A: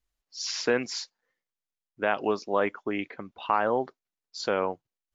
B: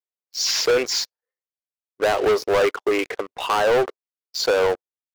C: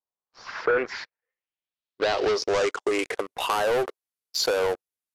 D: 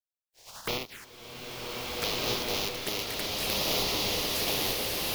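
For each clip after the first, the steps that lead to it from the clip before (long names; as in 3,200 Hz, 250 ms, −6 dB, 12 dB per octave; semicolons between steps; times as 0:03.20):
high-pass filter 100 Hz; low shelf with overshoot 290 Hz −13.5 dB, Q 3; leveller curve on the samples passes 5; level −6 dB
downward compressor, threshold −22 dBFS, peak gain reduction 6 dB; low-pass filter sweep 940 Hz → 12,000 Hz, 0:00.10–0:03.35
compressing power law on the bin magnitudes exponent 0.25; phaser swept by the level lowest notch 200 Hz, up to 1,600 Hz, full sweep at −22.5 dBFS; slow-attack reverb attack 1,700 ms, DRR −5.5 dB; level −6.5 dB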